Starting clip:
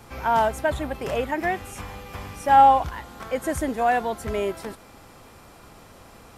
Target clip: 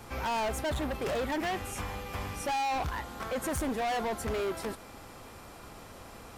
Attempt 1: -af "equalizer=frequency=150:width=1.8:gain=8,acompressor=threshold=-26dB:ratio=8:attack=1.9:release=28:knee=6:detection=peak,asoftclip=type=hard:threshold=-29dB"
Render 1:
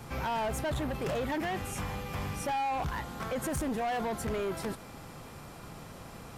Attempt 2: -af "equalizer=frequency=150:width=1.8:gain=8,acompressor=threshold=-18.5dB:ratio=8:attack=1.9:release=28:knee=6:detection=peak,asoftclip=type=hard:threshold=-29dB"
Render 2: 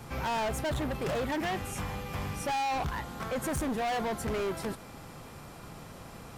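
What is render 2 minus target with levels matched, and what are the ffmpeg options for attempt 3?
125 Hz band +3.0 dB
-af "equalizer=frequency=150:width=1.8:gain=-2,acompressor=threshold=-18.5dB:ratio=8:attack=1.9:release=28:knee=6:detection=peak,asoftclip=type=hard:threshold=-29dB"

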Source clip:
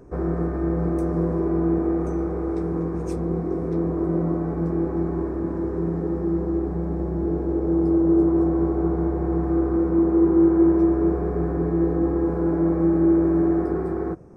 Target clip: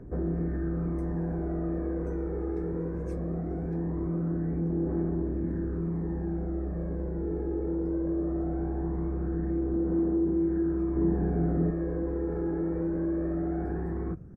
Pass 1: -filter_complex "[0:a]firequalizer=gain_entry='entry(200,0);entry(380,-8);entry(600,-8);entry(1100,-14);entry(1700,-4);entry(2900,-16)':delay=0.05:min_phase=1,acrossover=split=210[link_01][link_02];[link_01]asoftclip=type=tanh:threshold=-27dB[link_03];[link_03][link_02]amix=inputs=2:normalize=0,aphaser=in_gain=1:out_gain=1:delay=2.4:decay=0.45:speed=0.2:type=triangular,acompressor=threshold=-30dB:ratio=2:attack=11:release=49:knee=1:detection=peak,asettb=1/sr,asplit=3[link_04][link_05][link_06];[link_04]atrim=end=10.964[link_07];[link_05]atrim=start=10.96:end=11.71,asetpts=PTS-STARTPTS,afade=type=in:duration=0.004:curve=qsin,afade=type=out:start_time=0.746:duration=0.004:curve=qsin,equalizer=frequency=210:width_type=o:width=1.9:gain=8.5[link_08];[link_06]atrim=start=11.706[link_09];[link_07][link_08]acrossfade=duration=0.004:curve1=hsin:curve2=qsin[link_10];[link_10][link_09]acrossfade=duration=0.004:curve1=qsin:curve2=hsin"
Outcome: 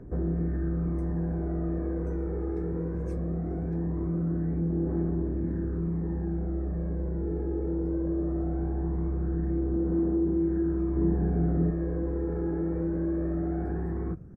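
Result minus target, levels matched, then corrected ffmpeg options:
soft clipping: distortion −7 dB
-filter_complex "[0:a]firequalizer=gain_entry='entry(200,0);entry(380,-8);entry(600,-8);entry(1100,-14);entry(1700,-4);entry(2900,-16)':delay=0.05:min_phase=1,acrossover=split=210[link_01][link_02];[link_01]asoftclip=type=tanh:threshold=-34.5dB[link_03];[link_03][link_02]amix=inputs=2:normalize=0,aphaser=in_gain=1:out_gain=1:delay=2.4:decay=0.45:speed=0.2:type=triangular,acompressor=threshold=-30dB:ratio=2:attack=11:release=49:knee=1:detection=peak,asettb=1/sr,asplit=3[link_04][link_05][link_06];[link_04]atrim=end=10.964[link_07];[link_05]atrim=start=10.96:end=11.71,asetpts=PTS-STARTPTS,afade=type=in:duration=0.004:curve=qsin,afade=type=out:start_time=0.746:duration=0.004:curve=qsin,equalizer=frequency=210:width_type=o:width=1.9:gain=8.5[link_08];[link_06]atrim=start=11.706[link_09];[link_07][link_08]acrossfade=duration=0.004:curve1=hsin:curve2=qsin[link_10];[link_10][link_09]acrossfade=duration=0.004:curve1=qsin:curve2=hsin"

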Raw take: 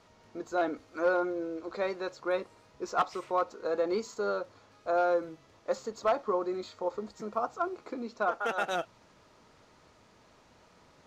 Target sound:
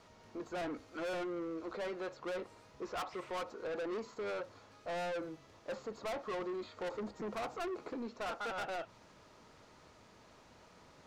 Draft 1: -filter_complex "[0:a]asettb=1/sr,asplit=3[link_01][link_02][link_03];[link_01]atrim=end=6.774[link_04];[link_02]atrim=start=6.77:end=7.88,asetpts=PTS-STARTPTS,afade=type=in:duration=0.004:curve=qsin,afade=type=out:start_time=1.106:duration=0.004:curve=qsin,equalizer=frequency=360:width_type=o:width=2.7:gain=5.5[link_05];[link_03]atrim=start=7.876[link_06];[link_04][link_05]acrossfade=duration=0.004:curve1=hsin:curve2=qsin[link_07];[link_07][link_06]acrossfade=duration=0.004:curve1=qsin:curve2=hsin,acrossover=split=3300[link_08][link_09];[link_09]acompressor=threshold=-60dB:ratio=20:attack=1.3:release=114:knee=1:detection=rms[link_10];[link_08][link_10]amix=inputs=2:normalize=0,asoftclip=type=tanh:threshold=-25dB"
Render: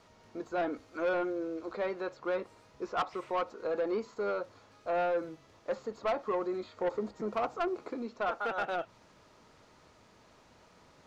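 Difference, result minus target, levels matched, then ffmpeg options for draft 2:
soft clipping: distortion −8 dB
-filter_complex "[0:a]asettb=1/sr,asplit=3[link_01][link_02][link_03];[link_01]atrim=end=6.774[link_04];[link_02]atrim=start=6.77:end=7.88,asetpts=PTS-STARTPTS,afade=type=in:duration=0.004:curve=qsin,afade=type=out:start_time=1.106:duration=0.004:curve=qsin,equalizer=frequency=360:width_type=o:width=2.7:gain=5.5[link_05];[link_03]atrim=start=7.876[link_06];[link_04][link_05]acrossfade=duration=0.004:curve1=hsin:curve2=qsin[link_07];[link_07][link_06]acrossfade=duration=0.004:curve1=qsin:curve2=hsin,acrossover=split=3300[link_08][link_09];[link_09]acompressor=threshold=-60dB:ratio=20:attack=1.3:release=114:knee=1:detection=rms[link_10];[link_08][link_10]amix=inputs=2:normalize=0,asoftclip=type=tanh:threshold=-36.5dB"

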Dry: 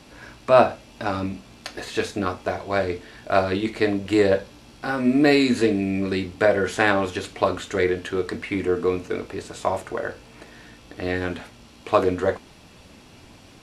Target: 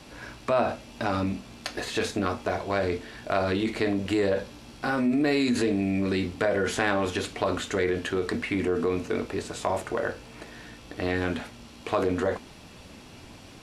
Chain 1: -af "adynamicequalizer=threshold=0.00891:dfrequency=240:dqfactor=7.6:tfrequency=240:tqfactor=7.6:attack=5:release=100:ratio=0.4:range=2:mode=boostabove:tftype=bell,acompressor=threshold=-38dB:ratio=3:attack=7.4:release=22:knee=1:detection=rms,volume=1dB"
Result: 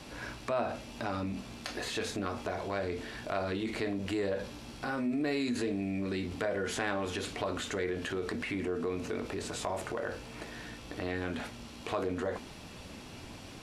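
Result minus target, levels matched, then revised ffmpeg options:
downward compressor: peak gain reduction +8 dB
-af "adynamicequalizer=threshold=0.00891:dfrequency=240:dqfactor=7.6:tfrequency=240:tqfactor=7.6:attack=5:release=100:ratio=0.4:range=2:mode=boostabove:tftype=bell,acompressor=threshold=-26dB:ratio=3:attack=7.4:release=22:knee=1:detection=rms,volume=1dB"

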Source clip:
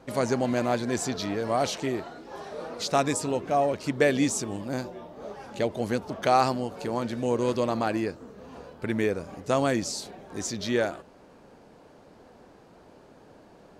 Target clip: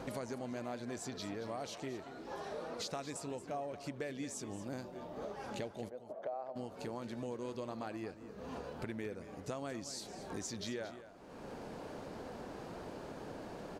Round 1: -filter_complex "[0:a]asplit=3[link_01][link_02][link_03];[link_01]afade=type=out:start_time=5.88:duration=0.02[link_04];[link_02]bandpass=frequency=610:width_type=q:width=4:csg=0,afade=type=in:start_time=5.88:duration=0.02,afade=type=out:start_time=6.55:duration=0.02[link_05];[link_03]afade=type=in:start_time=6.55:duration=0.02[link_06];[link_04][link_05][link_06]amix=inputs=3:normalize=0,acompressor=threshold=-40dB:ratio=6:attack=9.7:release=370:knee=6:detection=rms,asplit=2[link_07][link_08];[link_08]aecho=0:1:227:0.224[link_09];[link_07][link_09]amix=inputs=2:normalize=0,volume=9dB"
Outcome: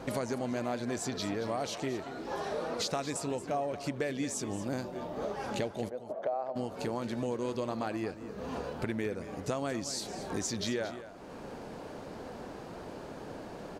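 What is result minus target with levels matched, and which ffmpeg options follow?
downward compressor: peak gain reduction −8 dB
-filter_complex "[0:a]asplit=3[link_01][link_02][link_03];[link_01]afade=type=out:start_time=5.88:duration=0.02[link_04];[link_02]bandpass=frequency=610:width_type=q:width=4:csg=0,afade=type=in:start_time=5.88:duration=0.02,afade=type=out:start_time=6.55:duration=0.02[link_05];[link_03]afade=type=in:start_time=6.55:duration=0.02[link_06];[link_04][link_05][link_06]amix=inputs=3:normalize=0,acompressor=threshold=-49.5dB:ratio=6:attack=9.7:release=370:knee=6:detection=rms,asplit=2[link_07][link_08];[link_08]aecho=0:1:227:0.224[link_09];[link_07][link_09]amix=inputs=2:normalize=0,volume=9dB"

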